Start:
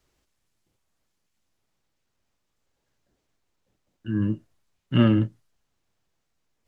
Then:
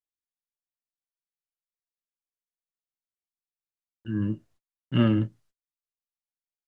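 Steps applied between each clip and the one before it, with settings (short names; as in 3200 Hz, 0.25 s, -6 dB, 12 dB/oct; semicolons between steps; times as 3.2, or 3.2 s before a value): gate -54 dBFS, range -36 dB; gain -3 dB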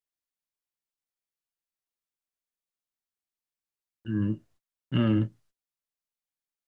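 limiter -15.5 dBFS, peak gain reduction 4.5 dB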